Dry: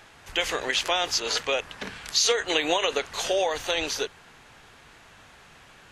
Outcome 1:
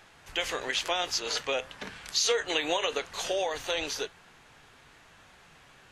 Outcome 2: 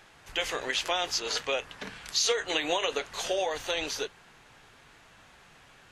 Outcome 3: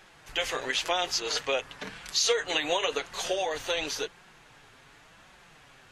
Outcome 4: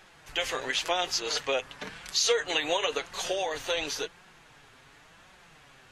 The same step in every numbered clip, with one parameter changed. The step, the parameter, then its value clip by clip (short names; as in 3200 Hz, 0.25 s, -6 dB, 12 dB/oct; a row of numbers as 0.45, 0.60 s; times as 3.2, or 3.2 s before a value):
flange, regen: +80, -69, -20, +31%